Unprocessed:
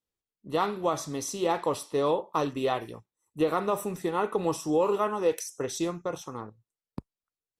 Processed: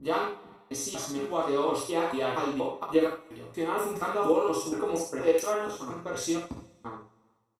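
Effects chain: slices in reverse order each 0.236 s, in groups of 3; bell 2100 Hz +4 dB 0.52 oct; two-slope reverb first 0.3 s, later 1.6 s, from -22 dB, DRR -2.5 dB; in parallel at -3 dB: level quantiser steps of 17 dB; on the sum: early reflections 60 ms -7.5 dB, 70 ms -9 dB; gain -8 dB

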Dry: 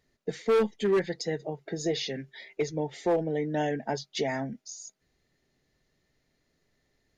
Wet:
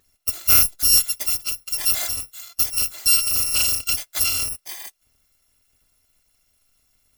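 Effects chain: FFT order left unsorted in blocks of 256 samples; gain +8.5 dB

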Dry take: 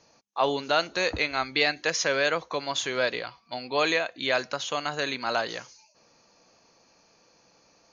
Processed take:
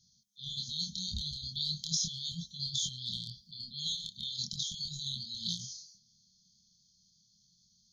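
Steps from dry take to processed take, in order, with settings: transient shaper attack -2 dB, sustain +12 dB; chorus 0.38 Hz, depth 5.2 ms; brick-wall FIR band-stop 220–3100 Hz; gain -1 dB

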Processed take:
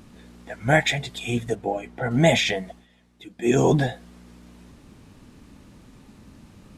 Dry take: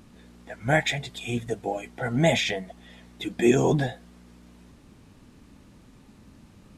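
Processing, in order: 1.55–2.11 high shelf 3100 Hz -10.5 dB; 2.69–3.59 dip -14 dB, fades 0.18 s; gain +3.5 dB

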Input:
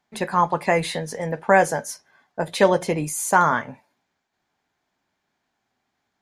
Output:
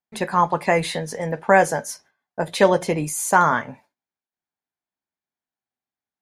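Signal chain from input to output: gate with hold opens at -45 dBFS; gain +1 dB

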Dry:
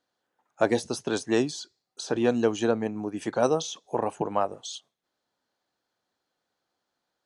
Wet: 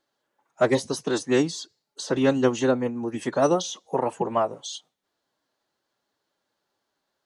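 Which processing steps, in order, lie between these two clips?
vibrato 6.5 Hz 18 cents; formant-preserving pitch shift +2 st; gain +3 dB

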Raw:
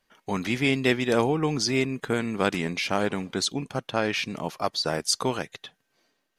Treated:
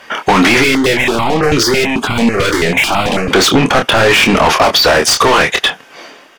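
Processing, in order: high shelf 5000 Hz -7.5 dB; notch 4100 Hz, Q 7.2; overdrive pedal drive 36 dB, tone 3700 Hz, clips at -8 dBFS; doubler 26 ms -6.5 dB; maximiser +13 dB; 0.64–3.31 step phaser 9.1 Hz 210–1700 Hz; gain -2.5 dB

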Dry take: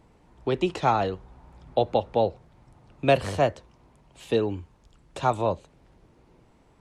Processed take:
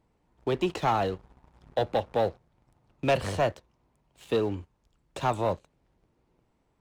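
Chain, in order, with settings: sample leveller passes 2; gain -8.5 dB

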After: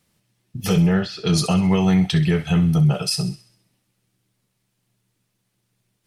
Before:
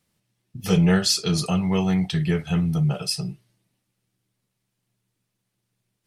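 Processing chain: limiter -15 dBFS, peak gain reduction 7 dB; 0.79–1.27 air absorption 370 m; on a send: thin delay 65 ms, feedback 50%, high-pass 1500 Hz, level -13 dB; on the sum: gain +5.5 dB

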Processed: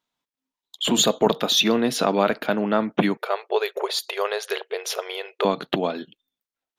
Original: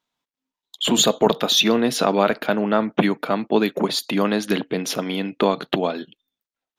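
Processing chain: 3.17–5.45 brick-wall FIR high-pass 370 Hz; gain -2 dB

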